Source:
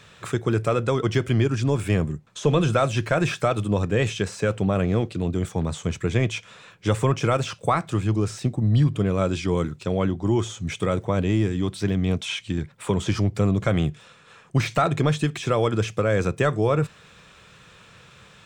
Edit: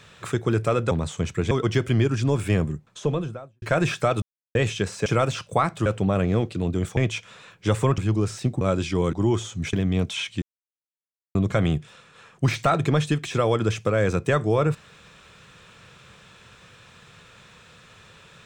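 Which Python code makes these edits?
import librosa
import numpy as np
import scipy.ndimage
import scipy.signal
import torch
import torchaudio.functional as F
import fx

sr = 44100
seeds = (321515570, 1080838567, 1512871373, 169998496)

y = fx.studio_fade_out(x, sr, start_s=2.12, length_s=0.9)
y = fx.edit(y, sr, fx.silence(start_s=3.62, length_s=0.33),
    fx.move(start_s=5.57, length_s=0.6, to_s=0.91),
    fx.move(start_s=7.18, length_s=0.8, to_s=4.46),
    fx.cut(start_s=8.61, length_s=0.53),
    fx.cut(start_s=9.66, length_s=0.52),
    fx.cut(start_s=10.78, length_s=1.07),
    fx.silence(start_s=12.54, length_s=0.93), tone=tone)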